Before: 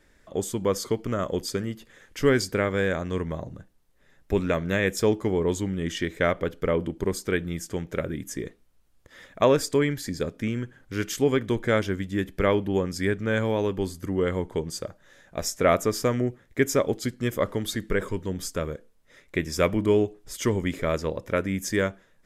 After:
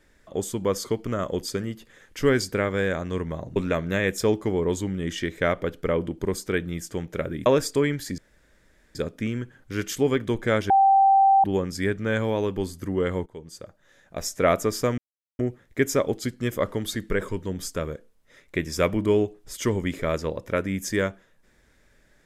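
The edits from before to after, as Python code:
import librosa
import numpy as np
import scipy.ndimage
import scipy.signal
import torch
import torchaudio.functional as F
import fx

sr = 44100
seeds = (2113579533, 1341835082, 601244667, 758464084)

y = fx.edit(x, sr, fx.cut(start_s=3.56, length_s=0.79),
    fx.cut(start_s=8.25, length_s=1.19),
    fx.insert_room_tone(at_s=10.16, length_s=0.77),
    fx.bleep(start_s=11.91, length_s=0.74, hz=781.0, db=-13.5),
    fx.fade_in_from(start_s=14.47, length_s=1.2, floor_db=-15.5),
    fx.insert_silence(at_s=16.19, length_s=0.41), tone=tone)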